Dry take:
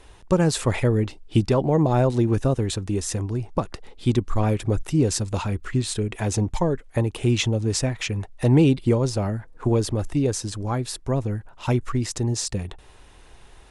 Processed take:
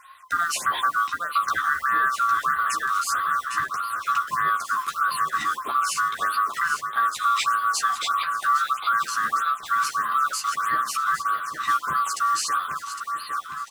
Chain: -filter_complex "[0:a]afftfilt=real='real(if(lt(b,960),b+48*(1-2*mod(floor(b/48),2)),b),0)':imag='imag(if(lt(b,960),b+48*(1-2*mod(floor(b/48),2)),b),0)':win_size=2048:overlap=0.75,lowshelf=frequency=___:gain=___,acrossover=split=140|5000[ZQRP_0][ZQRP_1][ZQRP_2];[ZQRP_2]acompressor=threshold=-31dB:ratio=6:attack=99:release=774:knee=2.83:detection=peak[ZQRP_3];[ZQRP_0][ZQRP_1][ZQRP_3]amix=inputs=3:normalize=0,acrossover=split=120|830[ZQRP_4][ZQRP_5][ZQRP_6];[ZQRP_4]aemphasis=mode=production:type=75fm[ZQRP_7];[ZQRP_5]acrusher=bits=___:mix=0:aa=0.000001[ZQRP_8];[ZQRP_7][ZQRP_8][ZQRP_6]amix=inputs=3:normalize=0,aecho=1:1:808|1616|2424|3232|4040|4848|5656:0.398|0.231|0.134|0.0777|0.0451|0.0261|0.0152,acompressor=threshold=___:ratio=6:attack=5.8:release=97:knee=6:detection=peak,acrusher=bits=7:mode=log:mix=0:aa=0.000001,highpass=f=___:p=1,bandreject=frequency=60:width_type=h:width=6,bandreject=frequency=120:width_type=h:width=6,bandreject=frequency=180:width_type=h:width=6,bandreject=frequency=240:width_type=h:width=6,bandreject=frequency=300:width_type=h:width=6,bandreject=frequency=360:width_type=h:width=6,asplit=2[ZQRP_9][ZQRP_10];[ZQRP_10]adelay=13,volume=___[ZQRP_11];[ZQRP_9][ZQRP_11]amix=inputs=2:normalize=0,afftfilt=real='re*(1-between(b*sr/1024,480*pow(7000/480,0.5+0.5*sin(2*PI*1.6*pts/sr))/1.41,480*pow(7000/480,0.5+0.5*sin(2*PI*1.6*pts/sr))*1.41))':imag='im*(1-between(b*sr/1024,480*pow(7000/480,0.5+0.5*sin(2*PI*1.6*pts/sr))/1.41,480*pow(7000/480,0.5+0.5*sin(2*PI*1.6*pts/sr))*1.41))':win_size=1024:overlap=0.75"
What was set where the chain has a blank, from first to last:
160, -12, 6, -20dB, 50, -4dB